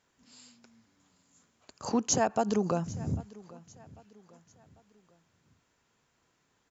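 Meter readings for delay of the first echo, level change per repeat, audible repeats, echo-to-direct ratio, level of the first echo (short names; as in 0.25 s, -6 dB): 0.796 s, -8.0 dB, 2, -20.0 dB, -21.0 dB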